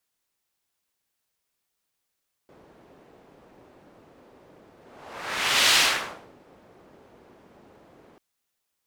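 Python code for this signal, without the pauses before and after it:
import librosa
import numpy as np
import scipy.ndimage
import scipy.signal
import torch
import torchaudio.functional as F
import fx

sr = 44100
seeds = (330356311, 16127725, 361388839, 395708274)

y = fx.whoosh(sr, seeds[0], length_s=5.69, peak_s=3.26, rise_s=1.05, fall_s=0.63, ends_hz=430.0, peak_hz=3400.0, q=0.89, swell_db=35)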